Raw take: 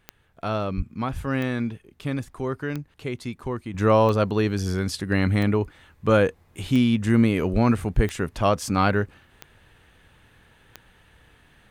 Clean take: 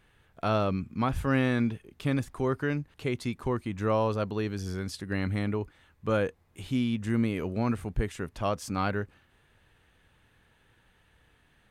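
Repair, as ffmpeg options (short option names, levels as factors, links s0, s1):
-filter_complex "[0:a]adeclick=t=4,asplit=3[s0][s1][s2];[s0]afade=t=out:st=0.76:d=0.02[s3];[s1]highpass=f=140:w=0.5412,highpass=f=140:w=1.3066,afade=t=in:st=0.76:d=0.02,afade=t=out:st=0.88:d=0.02[s4];[s2]afade=t=in:st=0.88:d=0.02[s5];[s3][s4][s5]amix=inputs=3:normalize=0,asplit=3[s6][s7][s8];[s6]afade=t=out:st=7.52:d=0.02[s9];[s7]highpass=f=140:w=0.5412,highpass=f=140:w=1.3066,afade=t=in:st=7.52:d=0.02,afade=t=out:st=7.64:d=0.02[s10];[s8]afade=t=in:st=7.64:d=0.02[s11];[s9][s10][s11]amix=inputs=3:normalize=0,asetnsamples=n=441:p=0,asendcmd='3.74 volume volume -8.5dB',volume=1"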